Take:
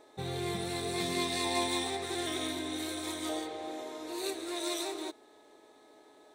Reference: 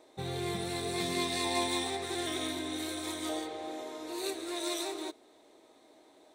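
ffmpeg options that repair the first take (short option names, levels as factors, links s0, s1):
-af "bandreject=f=424.2:t=h:w=4,bandreject=f=848.4:t=h:w=4,bandreject=f=1272.6:t=h:w=4,bandreject=f=1696.8:t=h:w=4"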